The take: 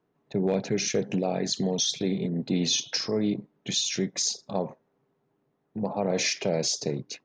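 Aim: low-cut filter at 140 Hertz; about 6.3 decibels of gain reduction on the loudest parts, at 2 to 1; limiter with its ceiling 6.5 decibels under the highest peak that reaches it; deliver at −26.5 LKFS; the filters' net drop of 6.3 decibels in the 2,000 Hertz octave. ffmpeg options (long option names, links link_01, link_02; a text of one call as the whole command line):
ffmpeg -i in.wav -af "highpass=140,equalizer=frequency=2000:width_type=o:gain=-8,acompressor=threshold=-34dB:ratio=2,volume=10dB,alimiter=limit=-16dB:level=0:latency=1" out.wav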